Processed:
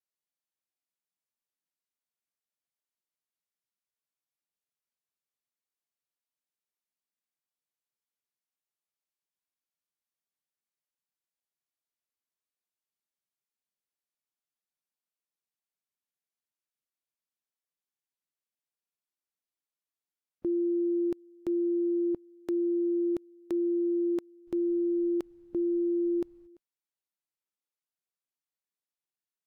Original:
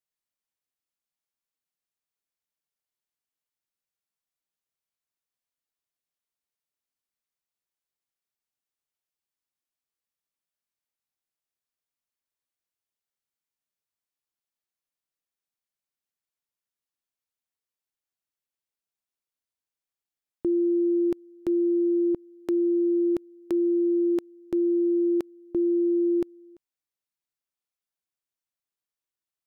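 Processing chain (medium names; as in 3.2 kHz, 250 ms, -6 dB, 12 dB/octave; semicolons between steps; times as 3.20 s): 24.46–26.46 s: added noise brown -62 dBFS; trim -5 dB; Vorbis 96 kbps 48 kHz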